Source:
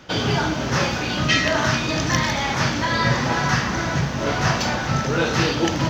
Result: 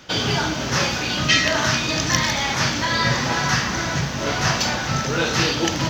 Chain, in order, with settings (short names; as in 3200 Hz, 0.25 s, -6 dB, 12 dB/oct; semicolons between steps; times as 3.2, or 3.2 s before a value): high shelf 2400 Hz +8 dB; gain -2 dB